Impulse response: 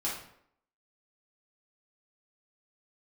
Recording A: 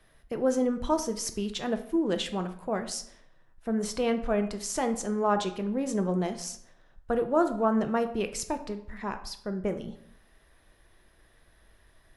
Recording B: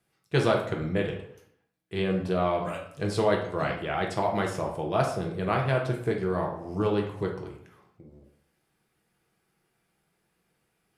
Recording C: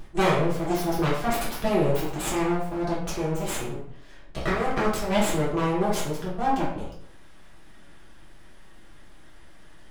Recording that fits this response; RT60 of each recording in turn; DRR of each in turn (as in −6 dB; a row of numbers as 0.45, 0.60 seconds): C; 0.65, 0.70, 0.70 seconds; 7.0, 0.0, −7.5 decibels